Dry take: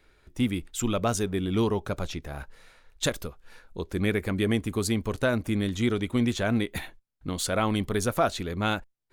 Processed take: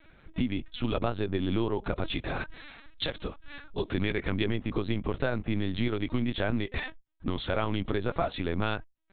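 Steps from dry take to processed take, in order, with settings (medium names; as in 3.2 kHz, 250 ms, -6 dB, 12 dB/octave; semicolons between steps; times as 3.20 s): 2.10–4.50 s: treble shelf 2.5 kHz -> 4 kHz +11 dB; compression 5:1, threshold -30 dBFS, peak gain reduction 13 dB; LPC vocoder at 8 kHz pitch kept; trim +4.5 dB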